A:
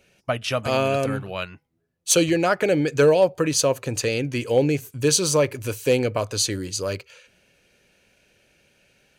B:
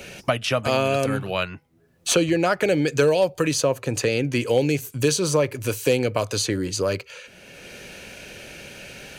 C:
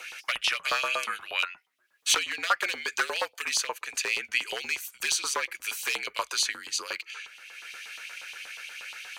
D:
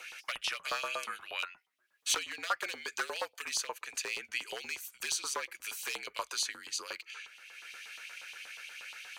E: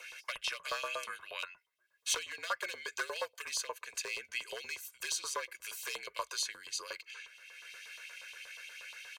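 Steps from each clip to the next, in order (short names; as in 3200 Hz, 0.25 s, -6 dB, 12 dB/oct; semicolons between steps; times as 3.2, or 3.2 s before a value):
three-band squash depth 70%
one-sided fold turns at -13.5 dBFS; LFO high-pass saw up 8.4 Hz 990–3500 Hz; frequency shift -52 Hz; gain -3 dB
dynamic EQ 2300 Hz, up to -4 dB, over -36 dBFS, Q 0.88; gain -5.5 dB
comb 1.9 ms, depth 62%; gain -3.5 dB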